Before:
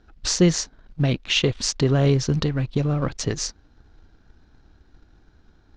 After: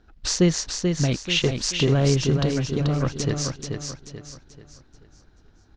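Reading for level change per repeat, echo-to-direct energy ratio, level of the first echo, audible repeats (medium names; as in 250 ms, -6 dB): -8.5 dB, -4.5 dB, -5.0 dB, 4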